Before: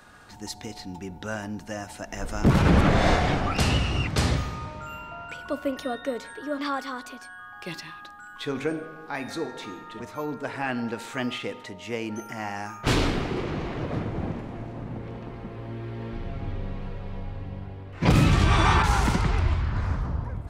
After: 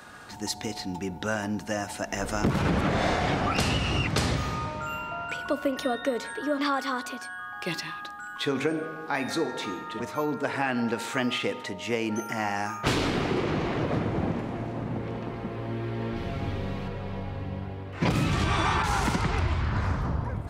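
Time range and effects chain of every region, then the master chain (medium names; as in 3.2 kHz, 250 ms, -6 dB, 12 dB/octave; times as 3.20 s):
16.16–16.88 s: treble shelf 3.4 kHz +9 dB + tape noise reduction on one side only decoder only
whole clip: high-pass 110 Hz 6 dB/octave; compression 6:1, threshold -27 dBFS; trim +5 dB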